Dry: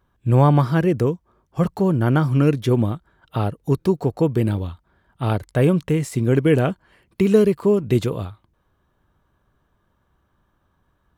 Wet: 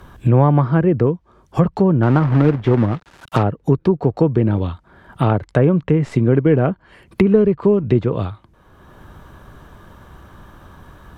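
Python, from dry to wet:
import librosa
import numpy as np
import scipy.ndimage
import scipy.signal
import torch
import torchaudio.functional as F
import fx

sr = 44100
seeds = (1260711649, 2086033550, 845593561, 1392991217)

y = fx.tracing_dist(x, sr, depth_ms=0.022)
y = fx.quant_companded(y, sr, bits=4, at=(2.03, 3.43))
y = fx.env_lowpass_down(y, sr, base_hz=1600.0, full_db=-15.5)
y = fx.band_squash(y, sr, depth_pct=70)
y = y * librosa.db_to_amplitude(3.0)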